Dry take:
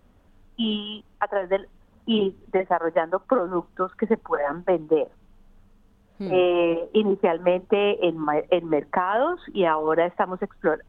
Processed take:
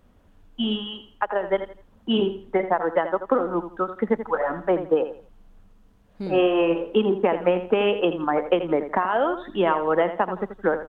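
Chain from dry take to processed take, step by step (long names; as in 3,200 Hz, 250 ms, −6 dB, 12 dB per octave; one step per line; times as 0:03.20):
repeating echo 83 ms, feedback 27%, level −11 dB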